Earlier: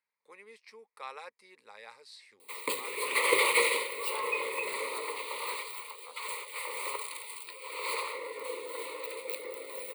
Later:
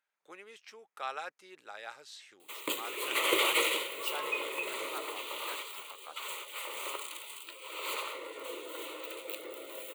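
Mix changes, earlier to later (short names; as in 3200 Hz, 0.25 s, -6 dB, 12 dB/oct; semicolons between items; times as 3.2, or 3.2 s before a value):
speech +4.5 dB; master: remove ripple EQ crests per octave 0.92, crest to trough 12 dB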